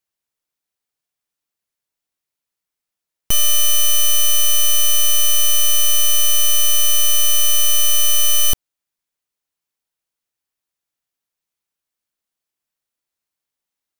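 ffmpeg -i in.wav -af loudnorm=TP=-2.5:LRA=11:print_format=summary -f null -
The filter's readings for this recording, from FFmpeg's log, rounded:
Input Integrated:    -13.6 LUFS
Input True Peak:      -7.5 dBTP
Input LRA:             6.4 LU
Input Threshold:     -23.7 LUFS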